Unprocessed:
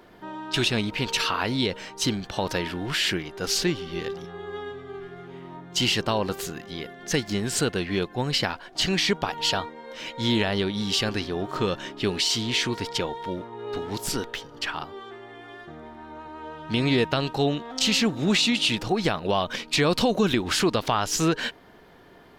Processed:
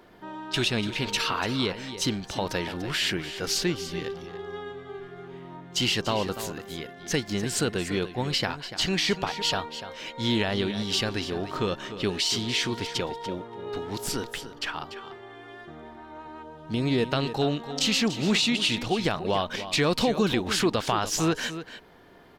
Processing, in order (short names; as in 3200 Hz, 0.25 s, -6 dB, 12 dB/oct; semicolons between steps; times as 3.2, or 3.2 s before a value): 16.42–17.07 bell 2200 Hz -13.5 dB -> -3 dB 2.3 oct; echo 0.291 s -12 dB; gain -2 dB